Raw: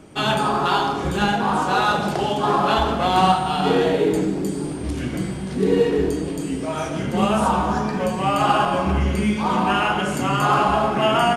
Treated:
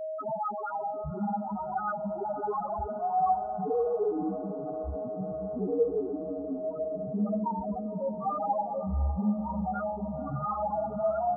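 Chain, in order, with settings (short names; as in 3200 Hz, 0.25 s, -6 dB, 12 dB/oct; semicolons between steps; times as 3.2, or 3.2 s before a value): whine 630 Hz -26 dBFS; loudest bins only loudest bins 2; diffused feedback echo 0.573 s, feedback 70%, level -14 dB; gain -5.5 dB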